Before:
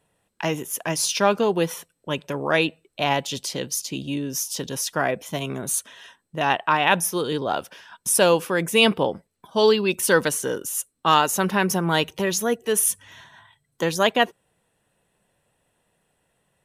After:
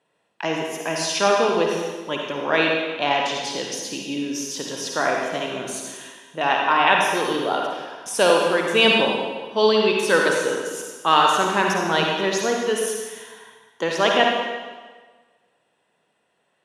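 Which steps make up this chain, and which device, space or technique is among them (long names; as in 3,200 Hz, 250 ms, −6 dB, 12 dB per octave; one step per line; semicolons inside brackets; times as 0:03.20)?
supermarket ceiling speaker (band-pass filter 260–5,600 Hz; convolution reverb RT60 1.4 s, pre-delay 46 ms, DRR −0.5 dB)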